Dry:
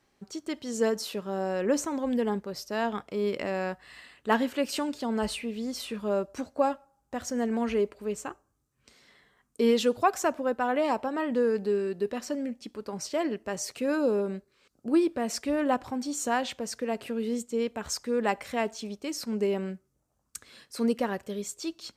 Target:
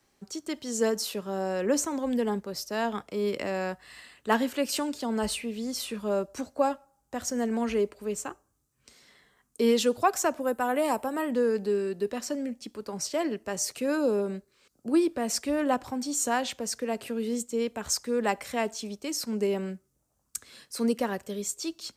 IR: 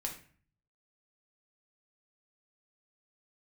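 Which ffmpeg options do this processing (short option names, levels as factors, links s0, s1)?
-filter_complex "[0:a]asettb=1/sr,asplit=3[s0][s1][s2];[s0]atrim=end=10.404[s3];[s1]atrim=start=10.4:end=11.31,asetpts=PTS-STARTPTS,afade=t=in:d=0.004:c=qsin,afade=t=out:st=0.906:d=0.004:c=qsin,highshelf=f=7400:t=q:w=1.5:g=10.5[s4];[s2]atrim=start=11.306[s5];[s3][s4]acrossfade=d=0.004:c1=hsin:c2=qsin[s6];[s6][s5]acrossfade=d=0.004:c1=qsin:c2=hsin,acrossover=split=270|450|5200[s7][s8][s9][s10];[s10]acontrast=63[s11];[s7][s8][s9][s11]amix=inputs=4:normalize=0"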